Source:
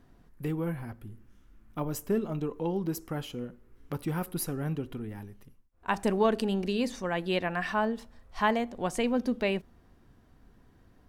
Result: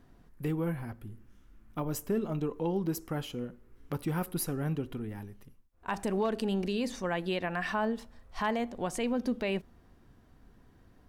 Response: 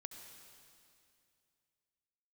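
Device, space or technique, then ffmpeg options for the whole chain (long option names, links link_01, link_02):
clipper into limiter: -af "asoftclip=type=hard:threshold=-15.5dB,alimiter=limit=-21.5dB:level=0:latency=1:release=84"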